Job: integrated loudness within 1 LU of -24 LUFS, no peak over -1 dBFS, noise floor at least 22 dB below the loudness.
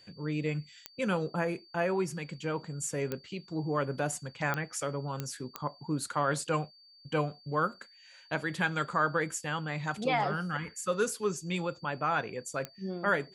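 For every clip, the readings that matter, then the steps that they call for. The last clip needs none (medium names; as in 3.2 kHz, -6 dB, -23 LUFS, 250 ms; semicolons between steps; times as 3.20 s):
clicks found 6; steady tone 4.6 kHz; tone level -56 dBFS; loudness -33.0 LUFS; peak level -14.0 dBFS; loudness target -24.0 LUFS
-> de-click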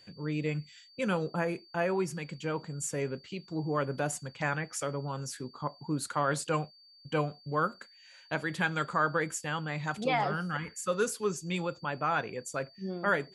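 clicks found 0; steady tone 4.6 kHz; tone level -56 dBFS
-> band-stop 4.6 kHz, Q 30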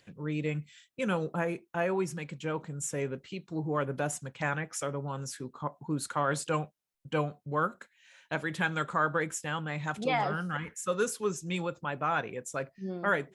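steady tone not found; loudness -33.0 LUFS; peak level -14.0 dBFS; loudness target -24.0 LUFS
-> trim +9 dB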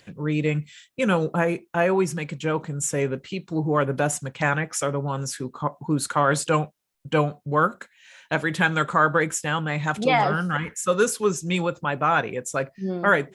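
loudness -24.0 LUFS; peak level -5.0 dBFS; noise floor -63 dBFS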